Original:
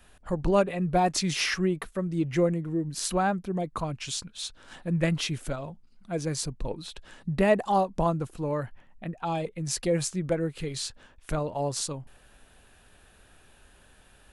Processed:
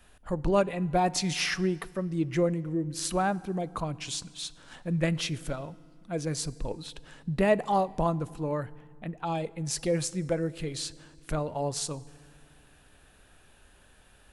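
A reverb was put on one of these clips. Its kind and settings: FDN reverb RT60 1.9 s, low-frequency decay 1.4×, high-frequency decay 0.8×, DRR 19 dB; trim -1.5 dB

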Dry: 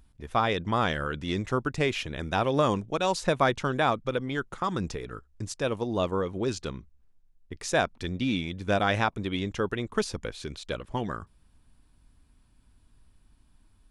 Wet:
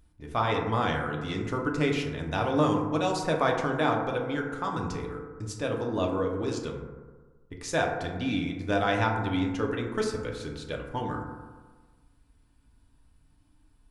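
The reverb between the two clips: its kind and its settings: FDN reverb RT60 1.4 s, low-frequency decay 1×, high-frequency decay 0.3×, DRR 0 dB; trim -4 dB

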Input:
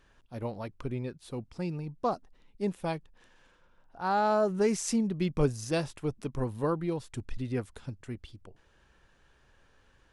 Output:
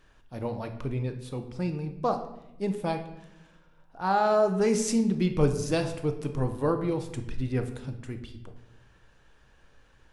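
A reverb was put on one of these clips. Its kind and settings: simulated room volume 320 m³, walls mixed, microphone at 0.56 m; trim +2 dB

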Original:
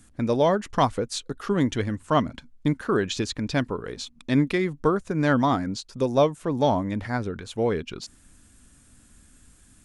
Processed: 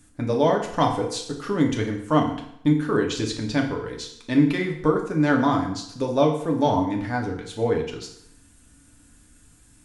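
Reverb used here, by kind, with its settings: FDN reverb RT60 0.72 s, low-frequency decay 0.9×, high-frequency decay 0.9×, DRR 0.5 dB; trim -2 dB

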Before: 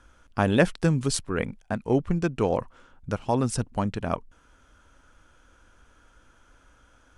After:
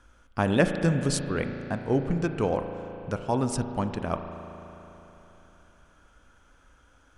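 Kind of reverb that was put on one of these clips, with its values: spring tank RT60 3.6 s, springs 36 ms, chirp 50 ms, DRR 7 dB; trim -2 dB

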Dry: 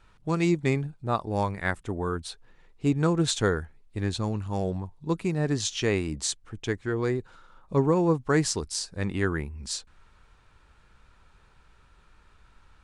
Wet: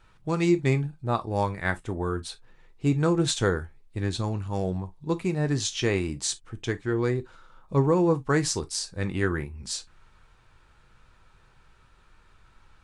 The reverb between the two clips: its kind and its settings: gated-style reverb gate 80 ms falling, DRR 8.5 dB

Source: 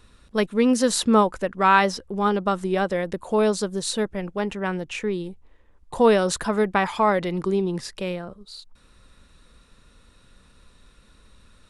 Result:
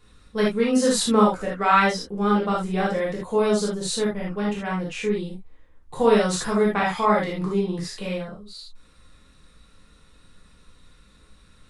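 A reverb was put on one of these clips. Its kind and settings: gated-style reverb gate 100 ms flat, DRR -5.5 dB; trim -6.5 dB

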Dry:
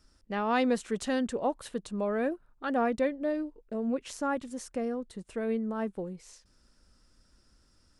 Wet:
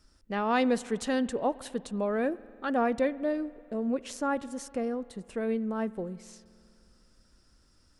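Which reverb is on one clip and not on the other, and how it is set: spring tank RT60 2.5 s, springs 50 ms, chirp 60 ms, DRR 19 dB; trim +1 dB

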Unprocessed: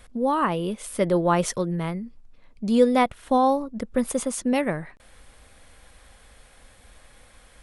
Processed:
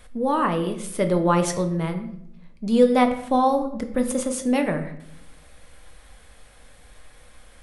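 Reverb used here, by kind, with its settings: simulated room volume 170 m³, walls mixed, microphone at 0.48 m

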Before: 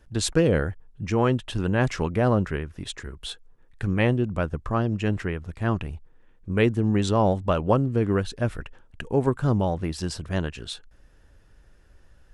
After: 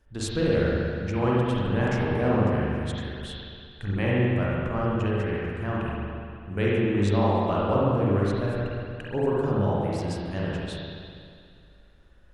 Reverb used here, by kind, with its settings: spring tank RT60 2.3 s, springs 40/59 ms, chirp 35 ms, DRR -6.5 dB; trim -8 dB

